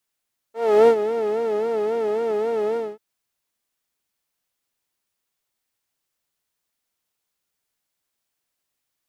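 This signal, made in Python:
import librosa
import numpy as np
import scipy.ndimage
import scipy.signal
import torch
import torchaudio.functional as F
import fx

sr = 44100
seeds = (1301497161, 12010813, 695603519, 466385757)

y = fx.sub_patch_vibrato(sr, seeds[0], note=69, wave='saw', wave2='saw', interval_st=7, detune_cents=16, level2_db=-8, sub_db=-17.5, noise_db=-6.5, kind='bandpass', cutoff_hz=290.0, q=1.4, env_oct=1.0, env_decay_s=0.37, env_sustain_pct=35, attack_ms=341.0, decay_s=0.07, sustain_db=-11.0, release_s=0.22, note_s=2.22, lfo_hz=3.7, vibrato_cents=100)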